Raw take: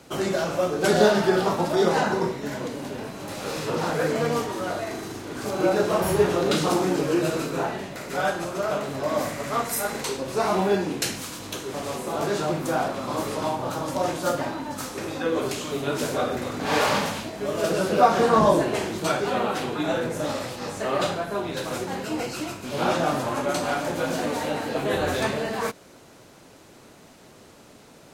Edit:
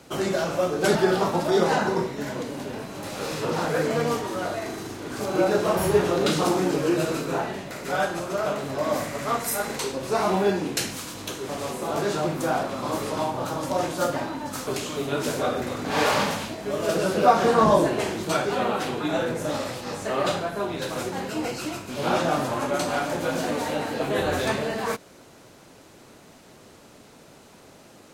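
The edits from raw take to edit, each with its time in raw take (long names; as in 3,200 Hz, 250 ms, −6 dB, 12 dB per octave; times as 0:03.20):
0:00.95–0:01.20: remove
0:14.92–0:15.42: remove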